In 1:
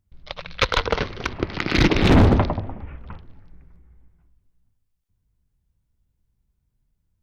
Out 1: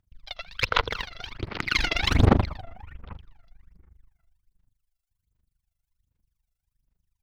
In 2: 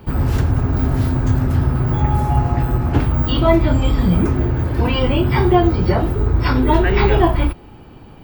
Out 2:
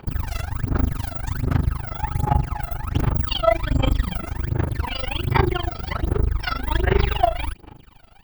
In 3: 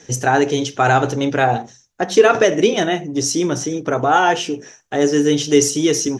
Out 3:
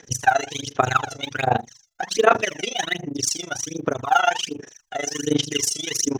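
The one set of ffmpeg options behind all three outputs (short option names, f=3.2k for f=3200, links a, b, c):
-af "tremolo=f=25:d=0.947,aphaser=in_gain=1:out_gain=1:delay=1.5:decay=0.79:speed=1.3:type=sinusoidal,tiltshelf=f=790:g=-6,volume=-7dB"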